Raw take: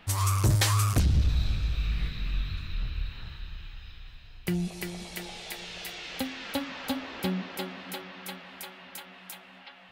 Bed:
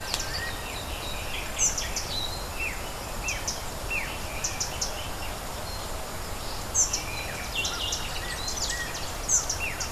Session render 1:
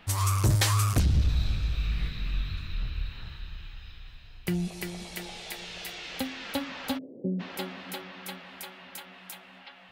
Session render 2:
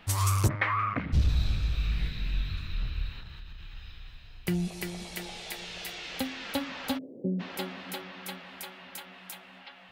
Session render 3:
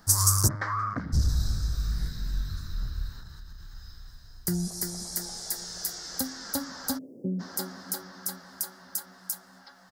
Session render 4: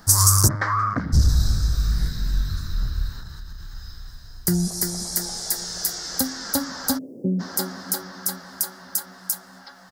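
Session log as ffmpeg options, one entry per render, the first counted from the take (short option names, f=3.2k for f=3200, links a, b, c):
-filter_complex "[0:a]asplit=3[a][b][c];[a]afade=t=out:st=6.97:d=0.02[d];[b]asuperpass=centerf=250:order=12:qfactor=0.58,afade=t=in:st=6.97:d=0.02,afade=t=out:st=7.39:d=0.02[e];[c]afade=t=in:st=7.39:d=0.02[f];[d][e][f]amix=inputs=3:normalize=0"
-filter_complex "[0:a]asplit=3[a][b][c];[a]afade=t=out:st=0.47:d=0.02[d];[b]highpass=220,equalizer=f=260:t=q:w=4:g=3,equalizer=f=370:t=q:w=4:g=-10,equalizer=f=780:t=q:w=4:g=-4,equalizer=f=1.2k:t=q:w=4:g=6,equalizer=f=2.1k:t=q:w=4:g=10,lowpass=f=2.2k:w=0.5412,lowpass=f=2.2k:w=1.3066,afade=t=in:st=0.47:d=0.02,afade=t=out:st=1.12:d=0.02[e];[c]afade=t=in:st=1.12:d=0.02[f];[d][e][f]amix=inputs=3:normalize=0,asettb=1/sr,asplit=3[g][h][i];[g]atrim=end=1.984[j];[h]atrim=start=1.98:end=2.5,asetpts=PTS-STARTPTS,afade=t=in:d=0.004:c=qsin,afade=t=out:st=0.516:d=0.004:c=qsin,bandreject=f=1.2k:w=8.1[k];[i]atrim=start=2.496[l];[j][k]acrossfade=d=0.004:c1=hsin:c2=qsin[m];[m][l]acrossfade=d=0.004:c1=qsin:c2=hsin,asettb=1/sr,asplit=3[n][o][p];[n]atrim=end=3.194[q];[o]atrim=start=3.19:end=3.75,asetpts=PTS-STARTPTS,afade=t=in:d=0.004:c=qsin,afade=t=out:st=0.556:d=0.004:c=qsin,acompressor=threshold=-39dB:ratio=6:attack=3.2:release=140:knee=1:detection=peak[r];[p]atrim=start=3.746[s];[q][r]acrossfade=d=0.004:c1=hsin:c2=qsin[t];[t][s]acrossfade=d=0.004:c1=qsin:c2=hsin"
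-af "firequalizer=gain_entry='entry(220,0);entry(500,-4);entry(1600,1);entry(2500,-25);entry(5000,12)':delay=0.05:min_phase=1"
-af "volume=7.5dB,alimiter=limit=-3dB:level=0:latency=1"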